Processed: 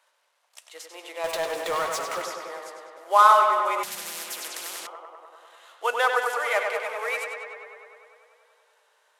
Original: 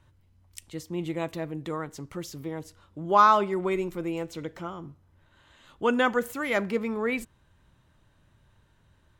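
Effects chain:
variable-slope delta modulation 64 kbit/s
Butterworth high-pass 530 Hz 36 dB per octave
0:01.24–0:02.22: power curve on the samples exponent 0.5
tape delay 98 ms, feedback 81%, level −4.5 dB, low-pass 4,500 Hz
0:03.83–0:04.87: every bin compressed towards the loudest bin 10 to 1
level +2.5 dB

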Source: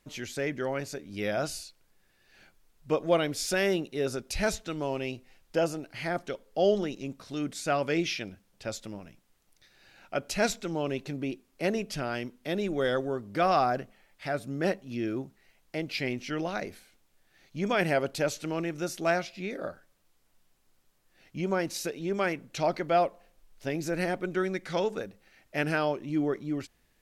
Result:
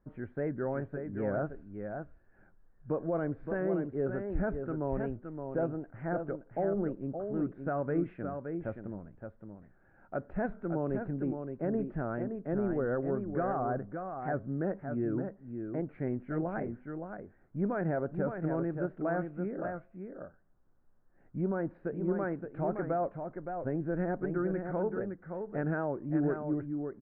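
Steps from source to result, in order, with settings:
elliptic low-pass filter 1,600 Hz, stop band 80 dB
brickwall limiter −21.5 dBFS, peak gain reduction 8 dB
low-shelf EQ 380 Hz +8.5 dB
single-tap delay 569 ms −6.5 dB
wow of a warped record 78 rpm, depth 100 cents
level −5.5 dB

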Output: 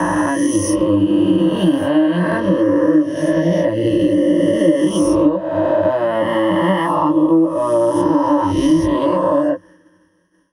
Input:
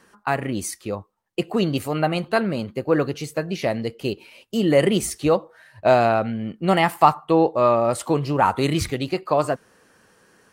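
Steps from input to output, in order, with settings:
peak hold with a rise ahead of every peak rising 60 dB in 2.67 s
EQ curve with evenly spaced ripples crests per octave 1.2, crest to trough 18 dB
chorus effect 0.25 Hz, delay 17 ms, depth 5.3 ms
hollow resonant body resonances 300/1,300 Hz, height 11 dB, ringing for 75 ms
downward compressor 8 to 1, threshold −21 dBFS, peak gain reduction 19 dB
tilt shelving filter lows +5 dB, about 1,400 Hz
downward expander −41 dBFS
multiband upward and downward expander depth 40%
level +5.5 dB

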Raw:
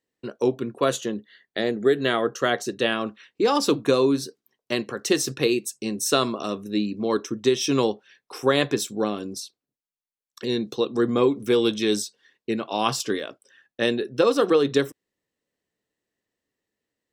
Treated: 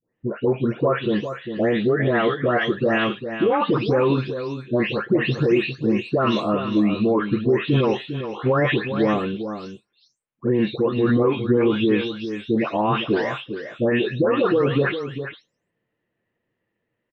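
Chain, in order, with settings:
every frequency bin delayed by itself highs late, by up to 392 ms
low-pass filter 2,700 Hz 24 dB per octave
brickwall limiter −20 dBFS, peak gain reduction 11.5 dB
parametric band 120 Hz +5 dB 1.2 octaves
on a send: single-tap delay 402 ms −9.5 dB
on the sum: level +8 dB

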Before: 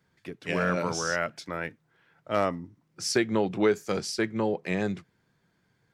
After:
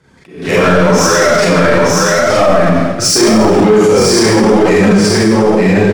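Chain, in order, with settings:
low-pass filter 10,000 Hz 24 dB per octave
soft clipping −24.5 dBFS, distortion −9 dB
high-shelf EQ 2,000 Hz −9 dB
on a send: single-tap delay 918 ms −5 dB
on the sum: four-comb reverb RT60 1.1 s, combs from 29 ms, DRR −8 dB
flanger 0.85 Hz, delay 1.9 ms, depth 7.4 ms, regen −33%
high-shelf EQ 7,300 Hz +12 dB
leveller curve on the samples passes 1
boost into a limiter +25.5 dB
level that may rise only so fast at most 110 dB per second
level −1 dB

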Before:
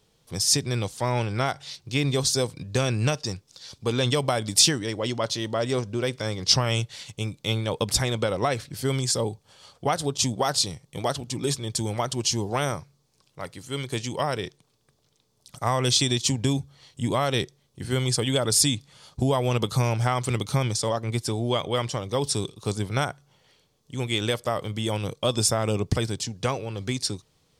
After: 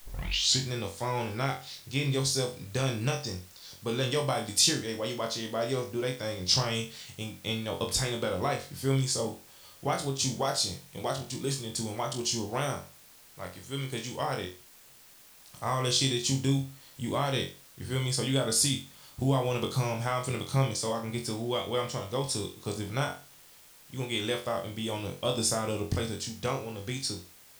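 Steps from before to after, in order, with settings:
turntable start at the beginning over 0.64 s
flutter between parallel walls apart 3.8 metres, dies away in 0.33 s
bit-depth reduction 8 bits, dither triangular
level −7 dB

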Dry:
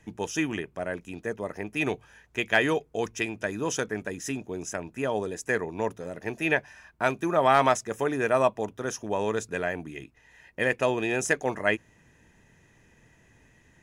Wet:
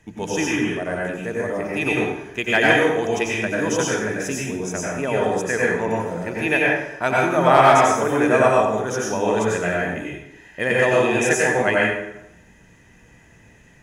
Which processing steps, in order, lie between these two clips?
dense smooth reverb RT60 0.86 s, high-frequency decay 0.75×, pre-delay 80 ms, DRR −5 dB
level +2.5 dB

